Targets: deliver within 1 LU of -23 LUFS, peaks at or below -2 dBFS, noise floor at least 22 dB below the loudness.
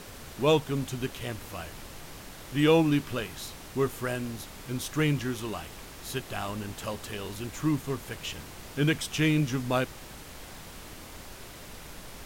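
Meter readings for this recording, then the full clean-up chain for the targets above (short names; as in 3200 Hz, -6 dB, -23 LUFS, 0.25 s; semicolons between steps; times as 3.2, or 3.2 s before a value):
noise floor -45 dBFS; noise floor target -52 dBFS; loudness -30.0 LUFS; peak -10.5 dBFS; loudness target -23.0 LUFS
-> noise print and reduce 7 dB; gain +7 dB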